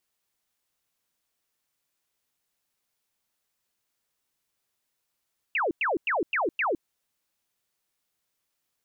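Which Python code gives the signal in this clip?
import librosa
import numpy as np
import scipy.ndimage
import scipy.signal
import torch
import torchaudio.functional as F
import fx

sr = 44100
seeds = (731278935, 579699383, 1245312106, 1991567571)

y = fx.laser_zaps(sr, level_db=-23.0, start_hz=2900.0, end_hz=290.0, length_s=0.16, wave='sine', shots=5, gap_s=0.1)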